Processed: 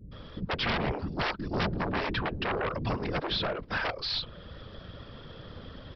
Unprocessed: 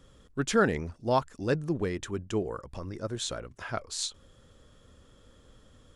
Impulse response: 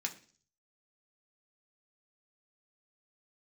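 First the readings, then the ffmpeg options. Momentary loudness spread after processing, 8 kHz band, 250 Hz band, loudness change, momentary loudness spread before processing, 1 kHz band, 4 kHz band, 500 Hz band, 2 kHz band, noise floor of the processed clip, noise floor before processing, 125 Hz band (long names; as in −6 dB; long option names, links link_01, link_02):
16 LU, below −20 dB, −2.0 dB, 0.0 dB, 12 LU, +1.0 dB, +6.0 dB, −3.5 dB, +4.0 dB, −48 dBFS, −59 dBFS, +0.5 dB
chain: -filter_complex "[0:a]acrossover=split=100|620|4100[link_01][link_02][link_03][link_04];[link_01]acompressor=threshold=-56dB:ratio=4[link_05];[link_02]acompressor=threshold=-31dB:ratio=4[link_06];[link_03]acompressor=threshold=-41dB:ratio=4[link_07];[link_04]acompressor=threshold=-52dB:ratio=4[link_08];[link_05][link_06][link_07][link_08]amix=inputs=4:normalize=0,afftfilt=real='hypot(re,im)*cos(2*PI*random(0))':imag='hypot(re,im)*sin(2*PI*random(1))':win_size=512:overlap=0.75,aresample=11025,aeval=exprs='0.0531*sin(PI/2*6.31*val(0)/0.0531)':channel_layout=same,aresample=44100,acrossover=split=310[link_09][link_10];[link_10]adelay=120[link_11];[link_09][link_11]amix=inputs=2:normalize=0"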